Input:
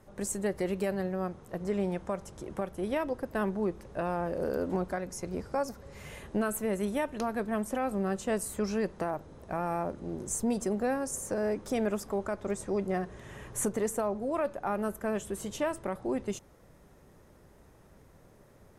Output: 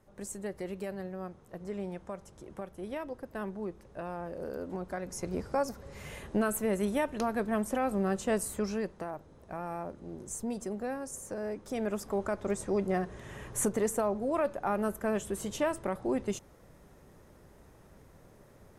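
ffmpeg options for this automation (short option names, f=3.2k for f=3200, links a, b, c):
-af "volume=8dB,afade=t=in:st=4.8:d=0.43:silence=0.398107,afade=t=out:st=8.39:d=0.59:silence=0.446684,afade=t=in:st=11.66:d=0.6:silence=0.446684"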